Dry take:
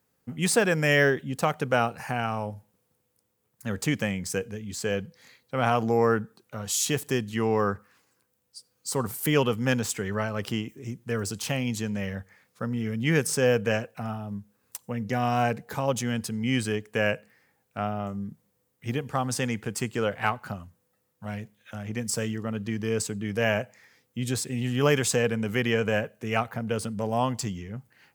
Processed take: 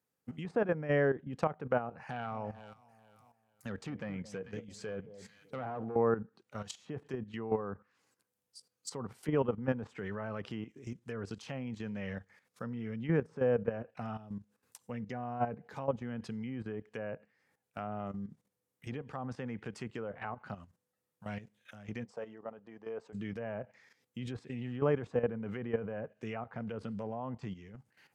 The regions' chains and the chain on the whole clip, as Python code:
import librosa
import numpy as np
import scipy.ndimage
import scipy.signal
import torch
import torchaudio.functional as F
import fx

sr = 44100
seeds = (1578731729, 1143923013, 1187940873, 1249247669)

y = fx.chain(x, sr, fx.overload_stage(gain_db=21.0),
    fx.echo_alternate(ms=221, hz=850.0, feedback_pct=60, wet_db=-12.5), at=(2.0, 5.96))
y = fx.chain(y, sr, fx.bandpass_q(hz=720.0, q=1.7),
    fx.peak_eq(hz=700.0, db=3.0, octaves=2.2), at=(22.05, 23.13))
y = fx.highpass(y, sr, hz=110.0, slope=6)
y = fx.env_lowpass_down(y, sr, base_hz=1100.0, full_db=-23.5)
y = fx.level_steps(y, sr, step_db=12)
y = y * 10.0 ** (-3.0 / 20.0)